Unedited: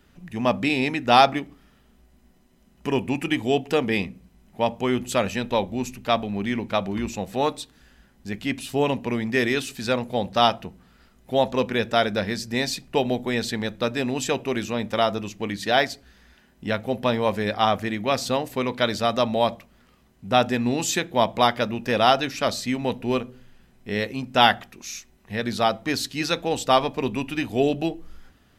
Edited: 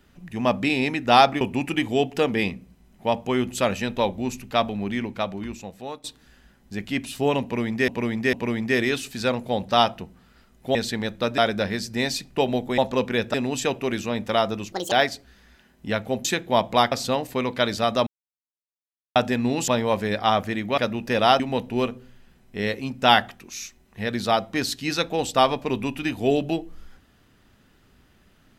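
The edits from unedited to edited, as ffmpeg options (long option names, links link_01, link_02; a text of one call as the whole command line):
ffmpeg -i in.wav -filter_complex "[0:a]asplit=18[link_01][link_02][link_03][link_04][link_05][link_06][link_07][link_08][link_09][link_10][link_11][link_12][link_13][link_14][link_15][link_16][link_17][link_18];[link_01]atrim=end=1.412[link_19];[link_02]atrim=start=2.948:end=7.58,asetpts=PTS-STARTPTS,afade=type=out:start_time=3.352:duration=1.28:silence=0.158489[link_20];[link_03]atrim=start=7.58:end=9.422,asetpts=PTS-STARTPTS,afade=type=in:duration=0.004:curve=hsin:silence=0.158489[link_21];[link_04]atrim=start=8.968:end=9.422[link_22];[link_05]atrim=start=8.968:end=11.392[link_23];[link_06]atrim=start=13.348:end=13.982[link_24];[link_07]atrim=start=11.948:end=13.352[link_25];[link_08]atrim=start=11.388:end=11.952[link_26];[link_09]atrim=start=13.978:end=15.364[link_27];[link_10]atrim=start=15.36:end=15.7,asetpts=PTS-STARTPTS,asetrate=76293,aresample=44100,atrim=end_sample=8667,asetpts=PTS-STARTPTS[link_28];[link_11]atrim=start=15.696:end=17.032[link_29];[link_12]atrim=start=20.888:end=21.562[link_30];[link_13]atrim=start=18.128:end=19.28,asetpts=PTS-STARTPTS,afade=type=out:start_time=1.148:duration=0.004:curve=hsin[link_31];[link_14]atrim=start=19.28:end=20.37,asetpts=PTS-STARTPTS,volume=0[link_32];[link_15]atrim=start=20.37:end=20.892,asetpts=PTS-STARTPTS,afade=type=in:duration=0.004:curve=hsin[link_33];[link_16]atrim=start=17.028:end=18.132[link_34];[link_17]atrim=start=21.558:end=22.182[link_35];[link_18]atrim=start=22.718[link_36];[link_20][link_21]concat=n=2:v=0:a=1[link_37];[link_19][link_37]acrossfade=duration=0.004:curve1=hsin:curve2=hsin[link_38];[link_38][link_22]acrossfade=duration=0.004:curve1=hsin:curve2=hsin[link_39];[link_39][link_23]acrossfade=duration=0.004:curve1=hsin:curve2=hsin[link_40];[link_40][link_24]acrossfade=duration=0.004:curve1=hsin:curve2=hsin[link_41];[link_41][link_25]acrossfade=duration=0.004:curve1=hsin:curve2=hsin[link_42];[link_42][link_26]acrossfade=duration=0.004:curve1=hsin:curve2=hsin[link_43];[link_43][link_27]acrossfade=duration=0.004:curve1=hsin:curve2=hsin[link_44];[link_44][link_28]acrossfade=duration=0.004:curve1=hsin:curve2=hsin[link_45];[link_45][link_29]acrossfade=duration=0.004:curve1=hsin:curve2=hsin[link_46];[link_46][link_30]acrossfade=duration=0.004:curve1=hsin:curve2=hsin[link_47];[link_31][link_32][link_33]concat=n=3:v=0:a=1[link_48];[link_47][link_48]acrossfade=duration=0.004:curve1=hsin:curve2=hsin[link_49];[link_49][link_34]acrossfade=duration=0.004:curve1=hsin:curve2=hsin[link_50];[link_50][link_35]acrossfade=duration=0.004:curve1=hsin:curve2=hsin[link_51];[link_51][link_36]acrossfade=duration=0.004:curve1=hsin:curve2=hsin" out.wav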